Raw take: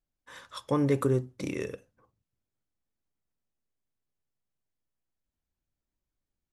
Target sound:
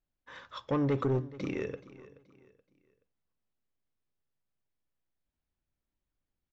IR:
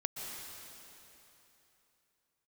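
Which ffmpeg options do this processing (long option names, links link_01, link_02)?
-af "aresample=16000,asoftclip=type=tanh:threshold=-23dB,aresample=44100,lowpass=3800,aecho=1:1:427|854|1281:0.119|0.0416|0.0146"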